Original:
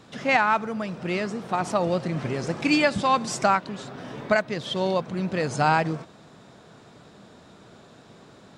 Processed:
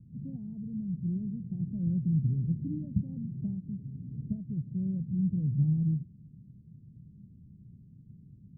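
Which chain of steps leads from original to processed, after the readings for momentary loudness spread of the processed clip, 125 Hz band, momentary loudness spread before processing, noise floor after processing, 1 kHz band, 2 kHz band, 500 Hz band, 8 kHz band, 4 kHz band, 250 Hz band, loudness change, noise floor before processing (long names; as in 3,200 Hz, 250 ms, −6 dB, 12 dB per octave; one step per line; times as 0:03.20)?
12 LU, +3.0 dB, 10 LU, −55 dBFS, below −40 dB, below −40 dB, −31.0 dB, below −40 dB, below −40 dB, −3.5 dB, −8.0 dB, −51 dBFS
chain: inverse Chebyshev low-pass filter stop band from 1,000 Hz, stop band 80 dB
level +5.5 dB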